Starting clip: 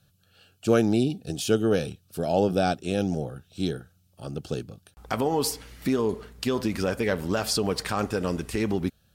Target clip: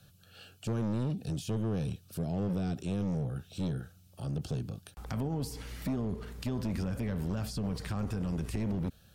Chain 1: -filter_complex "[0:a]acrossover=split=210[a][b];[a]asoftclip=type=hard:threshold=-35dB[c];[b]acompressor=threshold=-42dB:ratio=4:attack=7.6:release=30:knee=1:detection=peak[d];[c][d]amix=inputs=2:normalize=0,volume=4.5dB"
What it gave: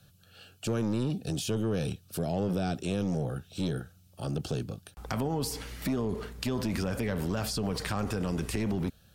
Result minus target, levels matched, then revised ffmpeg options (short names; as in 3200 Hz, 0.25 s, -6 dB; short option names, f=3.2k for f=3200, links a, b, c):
compressor: peak gain reduction -9 dB
-filter_complex "[0:a]acrossover=split=210[a][b];[a]asoftclip=type=hard:threshold=-35dB[c];[b]acompressor=threshold=-54dB:ratio=4:attack=7.6:release=30:knee=1:detection=peak[d];[c][d]amix=inputs=2:normalize=0,volume=4.5dB"